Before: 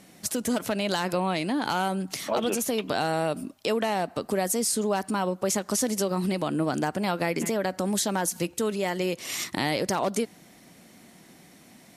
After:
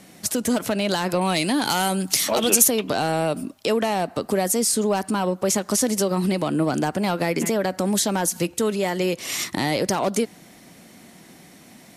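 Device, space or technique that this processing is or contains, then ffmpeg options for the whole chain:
one-band saturation: -filter_complex "[0:a]asettb=1/sr,asplit=3[link_01][link_02][link_03];[link_01]atrim=end=1.214[link_04];[link_02]atrim=start=1.21:end=2.68,asetpts=PTS-STARTPTS,afade=type=in:duration=0.004:curve=qsin,afade=type=out:start_time=1.466:duration=0.004:curve=qsin,highshelf=frequency=2900:gain=12[link_05];[link_03]atrim=start=2.676[link_06];[link_04][link_05]acrossfade=duration=0.004:curve1=hsin:curve2=qsin[link_07];[link_07][link_06]acrossfade=duration=0.004:curve1=qsin:curve2=hsin,acrossover=split=530|4300[link_08][link_09][link_10];[link_09]asoftclip=type=tanh:threshold=-24dB[link_11];[link_08][link_11][link_10]amix=inputs=3:normalize=0,volume=5dB"

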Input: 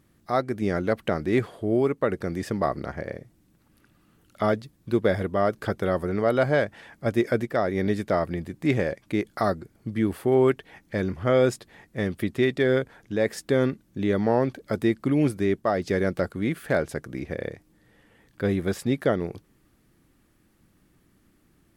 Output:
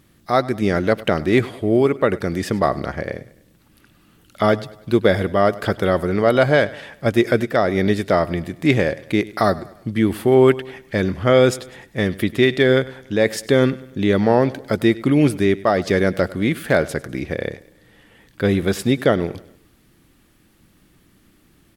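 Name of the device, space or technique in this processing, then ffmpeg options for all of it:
presence and air boost: -af "equalizer=frequency=3300:width_type=o:width=1.2:gain=5,highshelf=frequency=9300:gain=3.5,aecho=1:1:100|200|300|400:0.106|0.0487|0.0224|0.0103,volume=6.5dB"

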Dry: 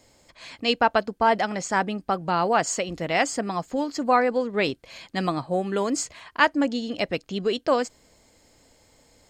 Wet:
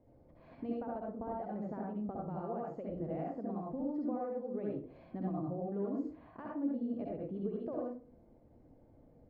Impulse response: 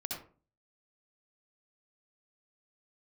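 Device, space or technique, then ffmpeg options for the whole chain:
television next door: -filter_complex "[0:a]acompressor=threshold=-34dB:ratio=4,lowpass=520[link_01];[1:a]atrim=start_sample=2205[link_02];[link_01][link_02]afir=irnorm=-1:irlink=0,volume=-1dB"

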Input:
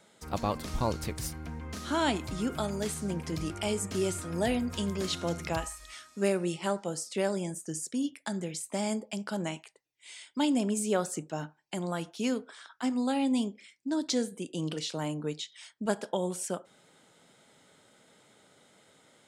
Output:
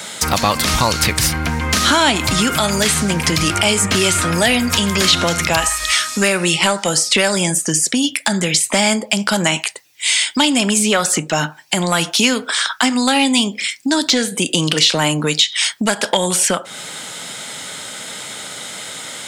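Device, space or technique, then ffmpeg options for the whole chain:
mastering chain: -filter_complex "[0:a]highpass=58,equalizer=frequency=380:width_type=o:width=0.77:gain=-3.5,acrossover=split=1100|3700[link_01][link_02][link_03];[link_01]acompressor=threshold=-35dB:ratio=4[link_04];[link_02]acompressor=threshold=-41dB:ratio=4[link_05];[link_03]acompressor=threshold=-51dB:ratio=4[link_06];[link_04][link_05][link_06]amix=inputs=3:normalize=0,acompressor=threshold=-47dB:ratio=1.5,asoftclip=type=tanh:threshold=-31dB,tiltshelf=frequency=1300:gain=-6,alimiter=level_in=31dB:limit=-1dB:release=50:level=0:latency=1,volume=-1dB"

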